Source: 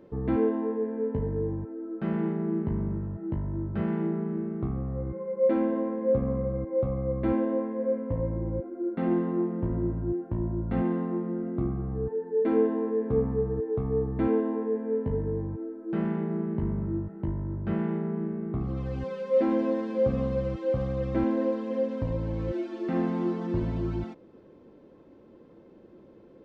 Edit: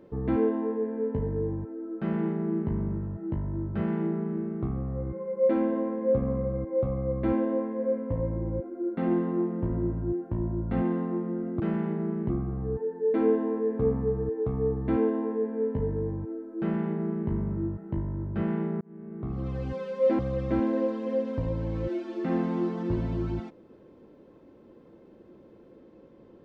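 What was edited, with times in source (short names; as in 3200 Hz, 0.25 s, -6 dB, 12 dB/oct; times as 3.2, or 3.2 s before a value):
15.91–16.6 copy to 11.6
18.12–18.78 fade in
19.5–20.83 cut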